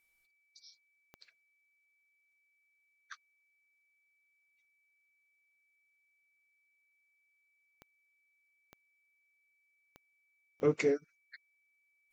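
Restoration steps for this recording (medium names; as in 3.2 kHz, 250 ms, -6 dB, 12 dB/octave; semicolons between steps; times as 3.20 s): de-click; band-stop 2.3 kHz, Q 30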